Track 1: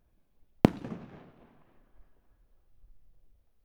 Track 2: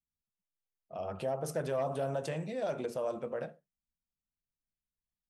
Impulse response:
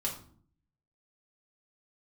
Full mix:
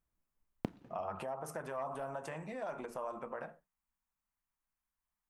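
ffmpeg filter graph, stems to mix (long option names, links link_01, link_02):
-filter_complex "[0:a]volume=-17.5dB[link_01];[1:a]acompressor=threshold=-40dB:ratio=5,equalizer=frequency=125:width_type=o:width=1:gain=-7,equalizer=frequency=500:width_type=o:width=1:gain=-6,equalizer=frequency=1000:width_type=o:width=1:gain=11,equalizer=frequency=2000:width_type=o:width=1:gain=3,equalizer=frequency=4000:width_type=o:width=1:gain=-9,volume=2dB[link_02];[link_01][link_02]amix=inputs=2:normalize=0"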